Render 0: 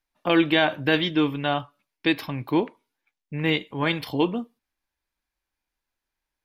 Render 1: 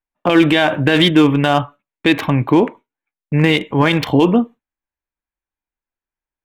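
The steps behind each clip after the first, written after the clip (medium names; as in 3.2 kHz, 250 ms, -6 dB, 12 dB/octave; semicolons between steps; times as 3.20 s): local Wiener filter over 9 samples; gate with hold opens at -41 dBFS; loudness maximiser +16.5 dB; trim -1 dB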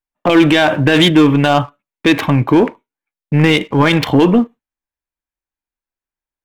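waveshaping leveller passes 1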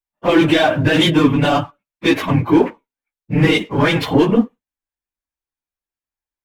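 phase randomisation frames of 50 ms; trim -3 dB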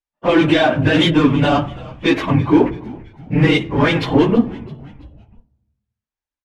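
distance through air 62 m; frequency-shifting echo 331 ms, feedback 46%, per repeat -82 Hz, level -20 dB; on a send at -18 dB: reverberation RT60 1.0 s, pre-delay 3 ms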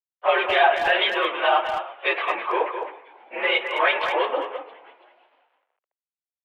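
bit crusher 10-bit; mistuned SSB +59 Hz 520–3200 Hz; speakerphone echo 210 ms, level -7 dB; trim -1 dB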